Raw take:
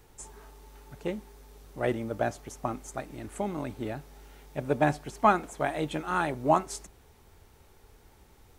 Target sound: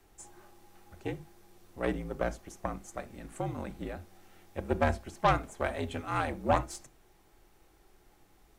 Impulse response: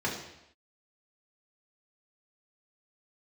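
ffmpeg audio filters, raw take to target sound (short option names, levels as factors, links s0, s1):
-filter_complex "[0:a]aeval=exprs='0.447*(cos(1*acos(clip(val(0)/0.447,-1,1)))-cos(1*PI/2))+0.0562*(cos(6*acos(clip(val(0)/0.447,-1,1)))-cos(6*PI/2))':c=same,asplit=2[s0][s1];[1:a]atrim=start_sample=2205,atrim=end_sample=3528[s2];[s1][s2]afir=irnorm=-1:irlink=0,volume=0.126[s3];[s0][s3]amix=inputs=2:normalize=0,afreqshift=-58,volume=0.531"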